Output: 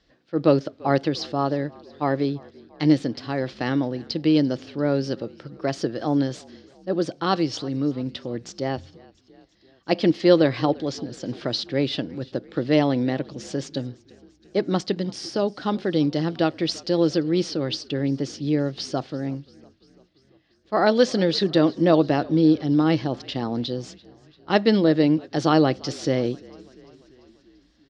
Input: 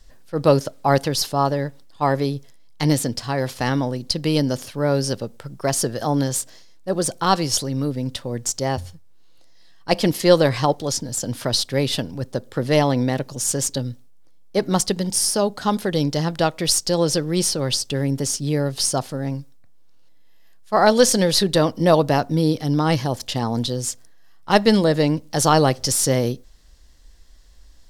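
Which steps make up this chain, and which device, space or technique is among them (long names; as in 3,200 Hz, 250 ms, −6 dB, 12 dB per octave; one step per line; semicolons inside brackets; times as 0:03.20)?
frequency-shifting delay pedal into a guitar cabinet (echo with shifted repeats 342 ms, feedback 63%, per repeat −47 Hz, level −23.5 dB; loudspeaker in its box 98–4,500 Hz, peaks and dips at 100 Hz −8 dB, 320 Hz +9 dB, 950 Hz −6 dB)
level −3.5 dB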